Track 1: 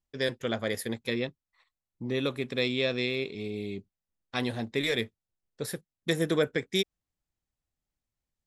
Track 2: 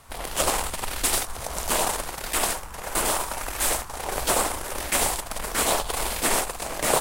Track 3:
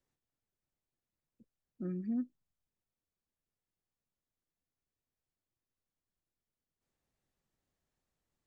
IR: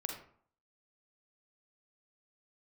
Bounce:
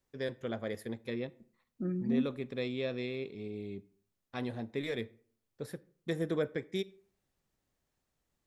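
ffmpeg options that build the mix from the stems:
-filter_complex "[0:a]highshelf=f=2k:g=-11,volume=-6.5dB,asplit=2[a][b];[b]volume=-16dB[c];[2:a]volume=2dB,asplit=2[d][e];[e]volume=-10.5dB[f];[3:a]atrim=start_sample=2205[g];[c][f]amix=inputs=2:normalize=0[h];[h][g]afir=irnorm=-1:irlink=0[i];[a][d][i]amix=inputs=3:normalize=0"

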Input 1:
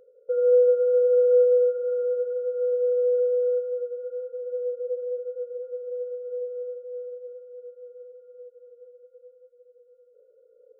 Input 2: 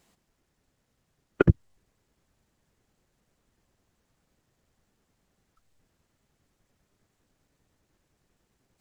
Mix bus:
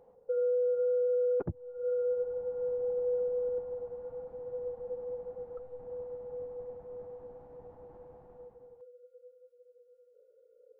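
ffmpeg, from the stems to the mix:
-filter_complex "[0:a]volume=-5dB[a];[1:a]lowpass=f=820:t=q:w=4.1,dynaudnorm=f=190:g=7:m=16.5dB,alimiter=limit=-11.5dB:level=0:latency=1:release=17,volume=-2.5dB,asplit=2[b][c];[c]apad=whole_len=476232[d];[a][d]sidechaincompress=threshold=-58dB:ratio=8:attack=16:release=140[e];[e][b]amix=inputs=2:normalize=0,alimiter=level_in=1dB:limit=-24dB:level=0:latency=1:release=76,volume=-1dB"

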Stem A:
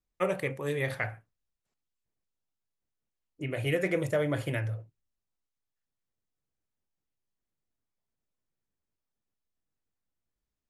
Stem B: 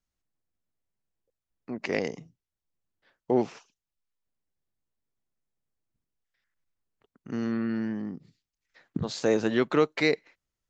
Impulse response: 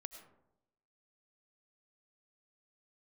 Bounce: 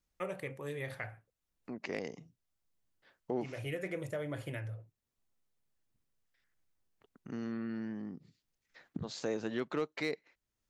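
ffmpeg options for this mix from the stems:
-filter_complex "[0:a]volume=-0.5dB[a];[1:a]asoftclip=type=hard:threshold=-12.5dB,volume=0dB[b];[a][b]amix=inputs=2:normalize=0,acompressor=threshold=-53dB:ratio=1.5"

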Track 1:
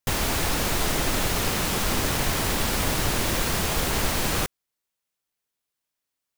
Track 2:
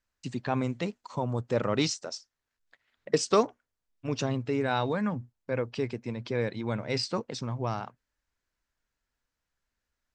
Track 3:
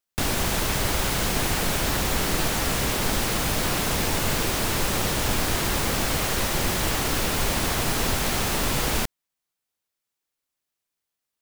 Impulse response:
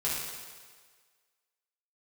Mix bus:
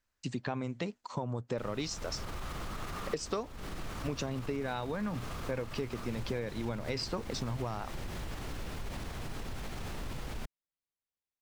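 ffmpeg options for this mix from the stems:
-filter_complex "[0:a]equalizer=f=1.2k:t=o:w=0.39:g=13.5,adelay=1600,volume=-6.5dB[a];[1:a]volume=1dB,asplit=2[b][c];[2:a]lowshelf=f=160:g=9,adelay=1400,volume=-13dB[d];[c]apad=whole_len=351570[e];[a][e]sidechaincompress=threshold=-33dB:ratio=8:attack=16:release=1480[f];[f][d]amix=inputs=2:normalize=0,lowpass=f=3.8k:p=1,alimiter=level_in=7dB:limit=-24dB:level=0:latency=1:release=76,volume=-7dB,volume=0dB[g];[b][g]amix=inputs=2:normalize=0,acompressor=threshold=-31dB:ratio=12"

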